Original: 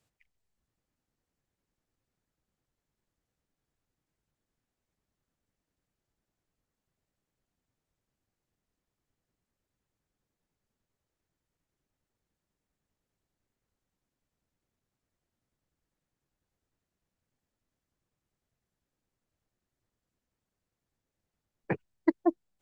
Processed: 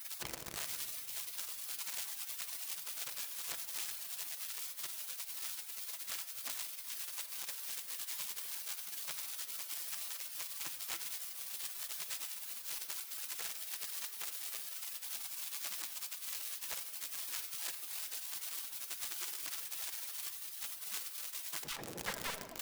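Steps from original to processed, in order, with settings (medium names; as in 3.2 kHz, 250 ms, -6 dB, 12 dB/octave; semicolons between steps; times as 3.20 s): jump at every zero crossing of -27 dBFS; tape echo 85 ms, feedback 88%, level -16.5 dB, low-pass 1.1 kHz; spectral gate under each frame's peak -25 dB weak; simulated room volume 3200 m³, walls mixed, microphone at 0.73 m; trim +2 dB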